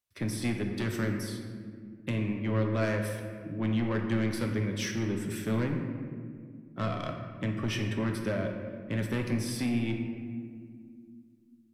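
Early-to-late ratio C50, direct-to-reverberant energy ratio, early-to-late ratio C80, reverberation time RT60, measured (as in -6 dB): 4.5 dB, 2.5 dB, 6.0 dB, 2.1 s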